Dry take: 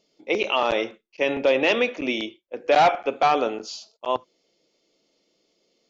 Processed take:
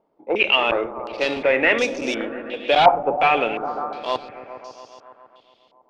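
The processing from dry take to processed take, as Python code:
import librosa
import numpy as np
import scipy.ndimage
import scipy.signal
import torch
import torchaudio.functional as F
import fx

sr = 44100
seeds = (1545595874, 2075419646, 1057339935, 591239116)

y = fx.cvsd(x, sr, bps=64000)
y = fx.echo_opening(y, sr, ms=138, hz=200, octaves=1, feedback_pct=70, wet_db=-6)
y = fx.filter_held_lowpass(y, sr, hz=2.8, low_hz=920.0, high_hz=5800.0)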